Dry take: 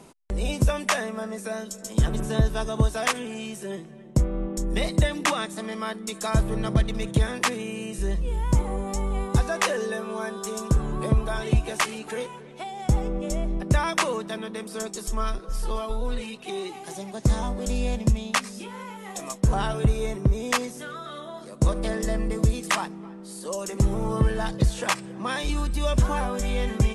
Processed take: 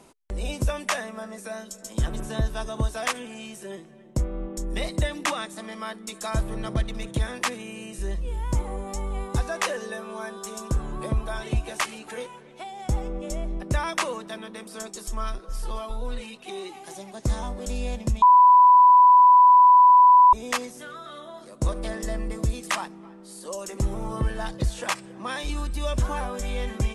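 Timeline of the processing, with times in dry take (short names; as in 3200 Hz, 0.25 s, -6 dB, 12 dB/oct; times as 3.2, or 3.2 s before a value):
18.22–20.33 bleep 993 Hz -7.5 dBFS
whole clip: bell 160 Hz -5.5 dB 1 oct; notch 430 Hz, Q 13; gain -2.5 dB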